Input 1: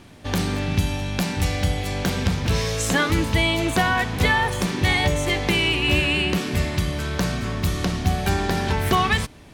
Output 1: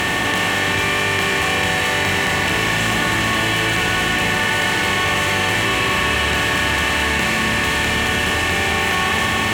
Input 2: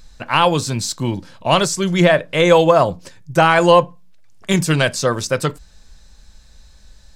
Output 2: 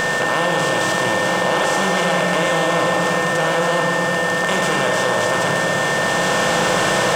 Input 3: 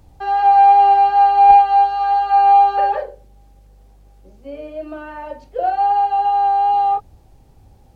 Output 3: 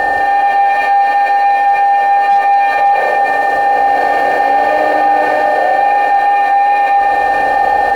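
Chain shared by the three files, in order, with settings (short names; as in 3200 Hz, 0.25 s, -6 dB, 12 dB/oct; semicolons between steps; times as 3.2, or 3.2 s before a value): per-bin compression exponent 0.2; low shelf 89 Hz -10.5 dB; notches 50/100/150/200/250/300/350/400 Hz; AGC; sample leveller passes 1; crossover distortion -43.5 dBFS; Schroeder reverb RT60 4 s, combs from 28 ms, DRR 0 dB; whine 1800 Hz -15 dBFS; added harmonics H 2 -31 dB, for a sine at 5.5 dBFS; fast leveller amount 70%; gain -11.5 dB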